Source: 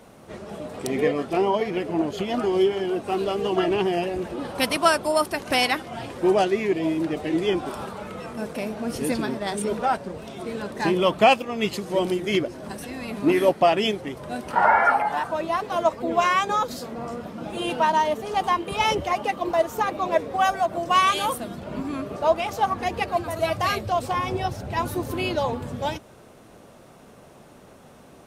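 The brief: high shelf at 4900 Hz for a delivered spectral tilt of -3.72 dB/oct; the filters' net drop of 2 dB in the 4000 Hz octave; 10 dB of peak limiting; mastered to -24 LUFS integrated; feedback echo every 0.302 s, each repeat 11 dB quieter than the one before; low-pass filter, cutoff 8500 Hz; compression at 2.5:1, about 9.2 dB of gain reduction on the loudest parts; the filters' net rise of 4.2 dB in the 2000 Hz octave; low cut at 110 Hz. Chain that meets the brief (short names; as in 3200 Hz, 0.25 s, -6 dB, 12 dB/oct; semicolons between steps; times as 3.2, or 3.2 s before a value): HPF 110 Hz; LPF 8500 Hz; bell 2000 Hz +7.5 dB; bell 4000 Hz -4 dB; high shelf 4900 Hz -6.5 dB; compressor 2.5:1, threshold -26 dBFS; limiter -21 dBFS; feedback echo 0.302 s, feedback 28%, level -11 dB; gain +7 dB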